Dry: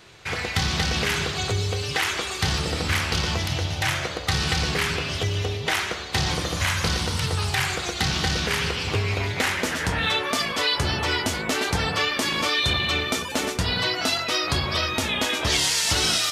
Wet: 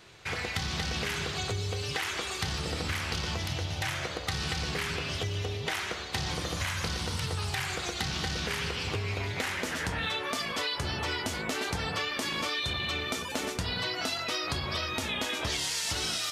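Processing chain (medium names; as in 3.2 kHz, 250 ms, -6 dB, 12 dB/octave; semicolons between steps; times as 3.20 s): compression, threshold -24 dBFS, peak gain reduction 6.5 dB; trim -4.5 dB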